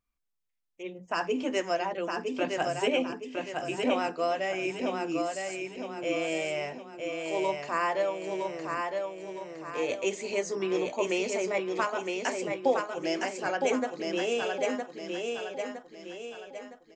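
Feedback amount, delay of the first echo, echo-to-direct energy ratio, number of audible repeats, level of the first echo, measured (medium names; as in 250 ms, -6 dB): 43%, 962 ms, -3.0 dB, 5, -4.0 dB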